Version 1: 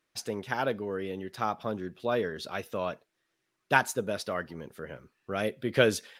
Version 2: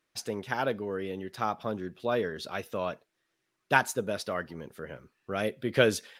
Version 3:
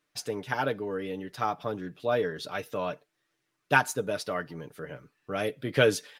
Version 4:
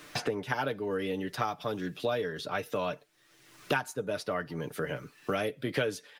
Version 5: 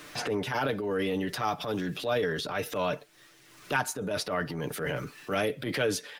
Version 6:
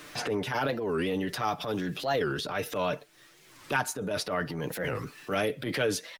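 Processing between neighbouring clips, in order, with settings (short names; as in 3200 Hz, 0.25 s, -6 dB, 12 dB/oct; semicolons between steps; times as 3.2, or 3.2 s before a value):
nothing audible
comb 6.8 ms, depth 50%
three-band squash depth 100%; gain -2.5 dB
transient shaper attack -9 dB, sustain +6 dB; gain +3.5 dB
record warp 45 rpm, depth 250 cents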